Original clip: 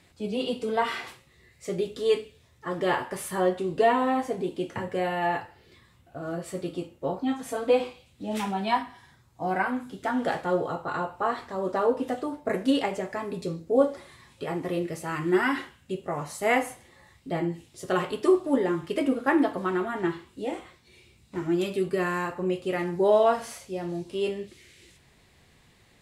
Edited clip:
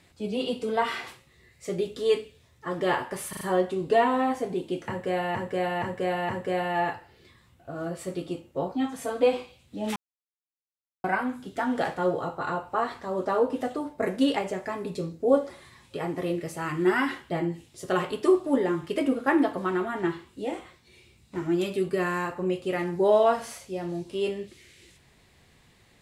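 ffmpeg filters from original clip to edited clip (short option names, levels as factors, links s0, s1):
-filter_complex "[0:a]asplit=10[s0][s1][s2][s3][s4][s5][s6][s7][s8][s9];[s0]atrim=end=3.332[s10];[s1]atrim=start=3.288:end=3.332[s11];[s2]atrim=start=3.288:end=3.332[s12];[s3]atrim=start=3.288:end=5.232[s13];[s4]atrim=start=4.758:end=5.232[s14];[s5]atrim=start=4.758:end=5.232[s15];[s6]atrim=start=4.758:end=8.43,asetpts=PTS-STARTPTS,afade=t=out:st=3.668:d=0.004:c=hsin[s16];[s7]atrim=start=8.43:end=9.51,asetpts=PTS-STARTPTS,volume=0[s17];[s8]atrim=start=9.51:end=15.772,asetpts=PTS-STARTPTS,afade=t=in:d=0.004:c=hsin[s18];[s9]atrim=start=17.298[s19];[s10][s11]acrossfade=d=0.004:c1=hsin:c2=hsin[s20];[s20][s12]acrossfade=d=0.004:c1=hsin:c2=hsin[s21];[s21][s13]acrossfade=d=0.004:c1=hsin:c2=hsin[s22];[s22][s14]acrossfade=d=0.004:c1=hsin:c2=hsin[s23];[s23][s15]acrossfade=d=0.004:c1=hsin:c2=hsin[s24];[s16][s17][s18]concat=n=3:v=0:a=1[s25];[s24][s25]acrossfade=d=0.004:c1=hsin:c2=hsin[s26];[s26][s19]acrossfade=d=0.004:c1=hsin:c2=hsin"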